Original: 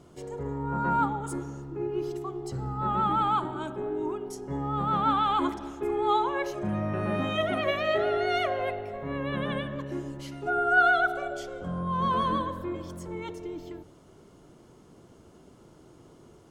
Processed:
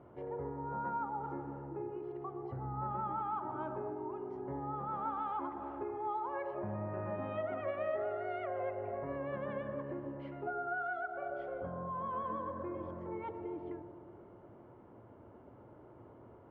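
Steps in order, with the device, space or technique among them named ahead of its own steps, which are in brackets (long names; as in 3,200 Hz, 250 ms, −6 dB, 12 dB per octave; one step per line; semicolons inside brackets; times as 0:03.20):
bass amplifier (downward compressor 5 to 1, threshold −35 dBFS, peak gain reduction 16.5 dB; loudspeaker in its box 63–2,100 Hz, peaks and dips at 110 Hz +7 dB, 160 Hz −8 dB, 570 Hz +6 dB, 890 Hz +6 dB)
bucket-brigade delay 121 ms, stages 1,024, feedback 72%, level −10 dB
level −4 dB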